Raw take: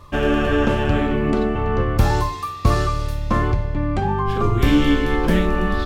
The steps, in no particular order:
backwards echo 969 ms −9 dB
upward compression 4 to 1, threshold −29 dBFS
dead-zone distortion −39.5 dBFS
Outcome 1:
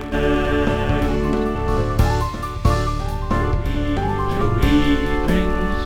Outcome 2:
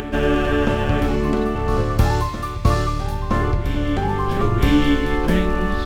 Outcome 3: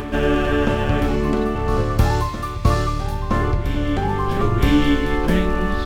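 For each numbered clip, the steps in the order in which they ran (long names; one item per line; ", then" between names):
dead-zone distortion, then upward compression, then backwards echo
dead-zone distortion, then backwards echo, then upward compression
upward compression, then dead-zone distortion, then backwards echo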